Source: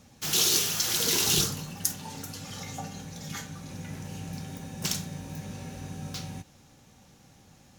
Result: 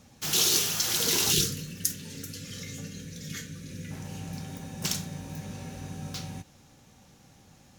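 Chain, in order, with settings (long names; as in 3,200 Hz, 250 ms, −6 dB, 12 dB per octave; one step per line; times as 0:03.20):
0:01.32–0:03.91: drawn EQ curve 510 Hz 0 dB, 750 Hz −26 dB, 1,700 Hz 0 dB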